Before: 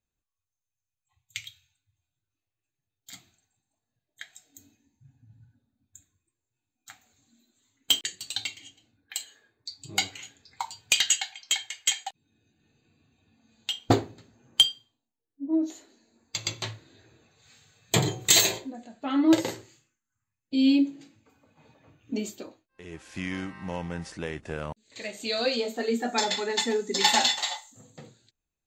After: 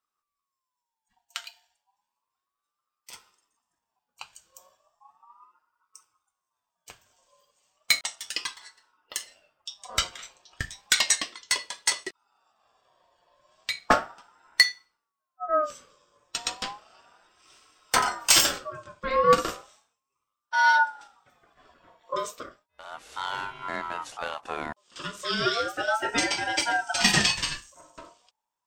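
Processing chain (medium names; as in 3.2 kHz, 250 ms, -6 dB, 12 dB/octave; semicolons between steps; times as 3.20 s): ring modulator with a swept carrier 1 kHz, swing 20%, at 0.34 Hz; trim +3.5 dB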